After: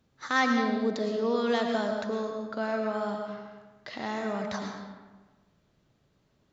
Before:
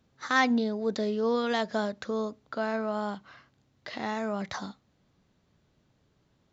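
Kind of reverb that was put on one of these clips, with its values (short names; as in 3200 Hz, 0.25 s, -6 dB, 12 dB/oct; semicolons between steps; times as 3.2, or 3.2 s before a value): digital reverb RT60 1.3 s, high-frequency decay 0.65×, pre-delay 70 ms, DRR 3 dB; gain -1.5 dB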